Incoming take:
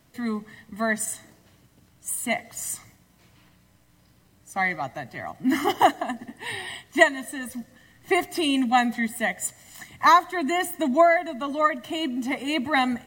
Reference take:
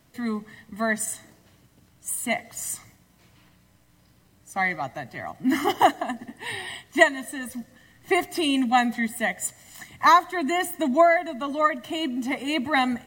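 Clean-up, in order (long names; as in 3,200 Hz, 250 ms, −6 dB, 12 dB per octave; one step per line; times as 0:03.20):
repair the gap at 0:01.05/0:03.37/0:09.16, 1.3 ms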